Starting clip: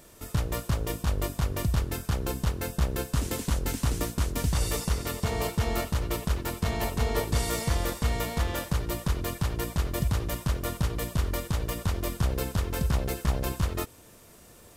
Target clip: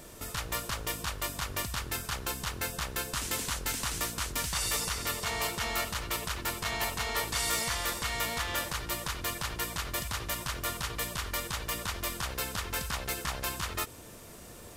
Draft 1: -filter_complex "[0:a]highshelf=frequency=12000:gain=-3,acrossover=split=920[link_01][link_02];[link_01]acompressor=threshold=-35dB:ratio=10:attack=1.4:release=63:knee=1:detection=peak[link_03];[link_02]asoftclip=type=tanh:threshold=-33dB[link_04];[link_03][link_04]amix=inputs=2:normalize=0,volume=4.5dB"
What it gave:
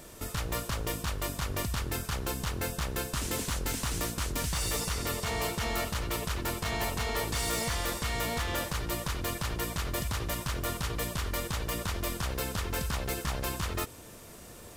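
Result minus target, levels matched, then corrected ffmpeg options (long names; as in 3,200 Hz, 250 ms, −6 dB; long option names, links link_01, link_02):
soft clipping: distortion +13 dB; downward compressor: peak gain reduction −6 dB
-filter_complex "[0:a]highshelf=frequency=12000:gain=-3,acrossover=split=920[link_01][link_02];[link_01]acompressor=threshold=-41.5dB:ratio=10:attack=1.4:release=63:knee=1:detection=peak[link_03];[link_02]asoftclip=type=tanh:threshold=-23.5dB[link_04];[link_03][link_04]amix=inputs=2:normalize=0,volume=4.5dB"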